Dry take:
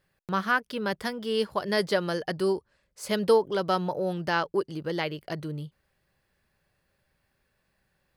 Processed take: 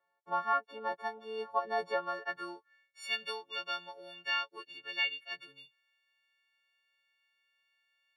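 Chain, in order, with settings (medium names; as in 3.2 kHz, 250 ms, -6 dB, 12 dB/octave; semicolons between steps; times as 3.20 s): partials quantised in pitch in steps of 4 st; band-pass sweep 830 Hz -> 2.7 kHz, 1.85–3.11 s; tone controls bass -5 dB, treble -7 dB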